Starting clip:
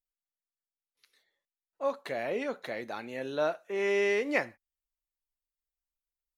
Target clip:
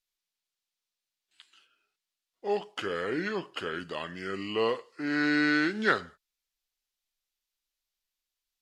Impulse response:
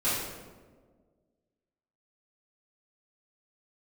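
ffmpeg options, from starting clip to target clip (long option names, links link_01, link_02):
-af "equalizer=frequency=5300:width=0.55:gain=11.5,asetrate=32667,aresample=44100"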